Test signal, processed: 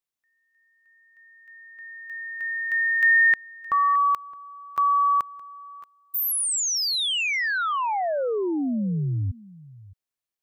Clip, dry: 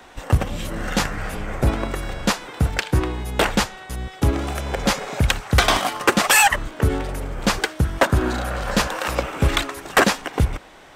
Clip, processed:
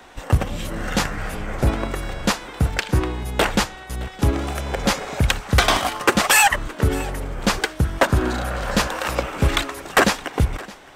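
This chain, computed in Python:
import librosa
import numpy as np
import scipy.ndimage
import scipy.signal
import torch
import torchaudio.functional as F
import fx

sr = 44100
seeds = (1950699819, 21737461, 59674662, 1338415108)

y = x + 10.0 ** (-20.5 / 20.0) * np.pad(x, (int(617 * sr / 1000.0), 0))[:len(x)]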